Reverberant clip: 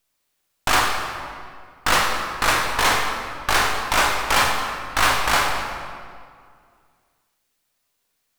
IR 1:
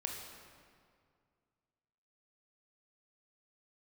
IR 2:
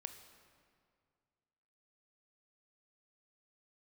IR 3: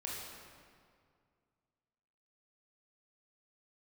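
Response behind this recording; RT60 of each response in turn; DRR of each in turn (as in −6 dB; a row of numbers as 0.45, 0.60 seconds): 1; 2.2, 2.1, 2.2 seconds; 0.5, 7.5, −4.5 decibels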